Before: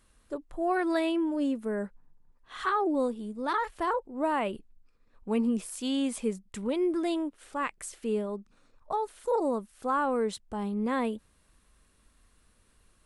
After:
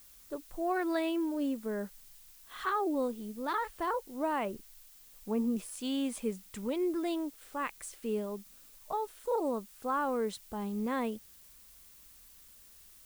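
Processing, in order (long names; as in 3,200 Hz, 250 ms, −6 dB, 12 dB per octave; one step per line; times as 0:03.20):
0:04.45–0:05.56: low-pass filter 1,400 Hz
background noise blue −53 dBFS
level −4 dB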